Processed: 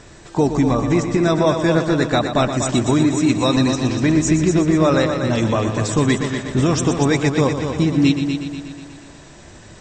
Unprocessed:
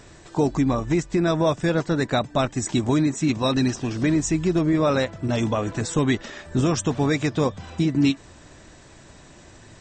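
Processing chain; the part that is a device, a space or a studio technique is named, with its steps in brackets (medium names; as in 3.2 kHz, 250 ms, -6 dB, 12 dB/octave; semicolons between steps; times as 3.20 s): multi-head tape echo (multi-head delay 121 ms, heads first and second, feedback 53%, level -9.5 dB; wow and flutter 9.5 cents); trim +4 dB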